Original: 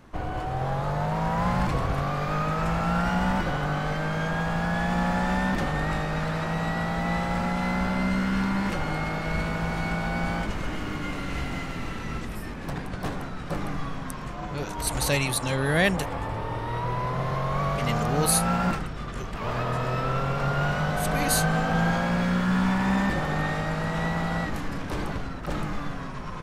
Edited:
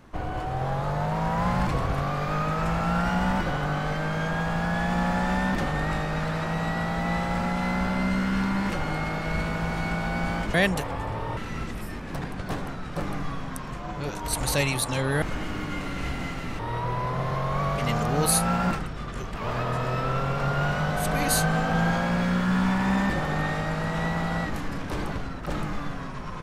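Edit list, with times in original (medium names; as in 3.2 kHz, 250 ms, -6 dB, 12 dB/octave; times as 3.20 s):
10.54–11.91 s: swap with 15.76–16.59 s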